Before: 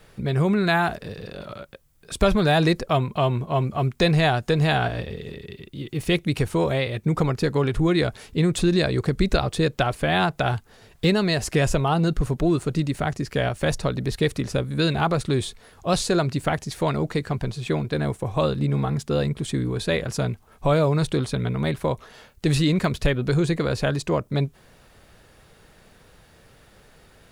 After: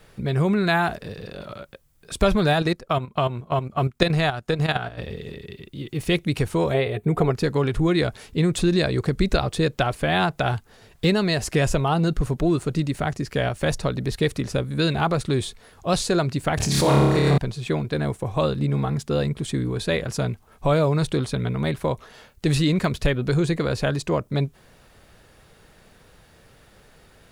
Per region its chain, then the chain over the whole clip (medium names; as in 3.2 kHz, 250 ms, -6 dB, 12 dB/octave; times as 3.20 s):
2.53–5.02 s: peaking EQ 1.3 kHz +5 dB 0.29 oct + transient shaper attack +8 dB, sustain -8 dB + level held to a coarse grid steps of 10 dB
6.74–7.31 s: peaking EQ 5.5 kHz -14 dB 0.59 oct + small resonant body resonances 420/700 Hz, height 13 dB, ringing for 95 ms
16.57–17.38 s: flutter echo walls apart 4.9 m, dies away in 1.3 s + swell ahead of each attack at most 26 dB/s
whole clip: none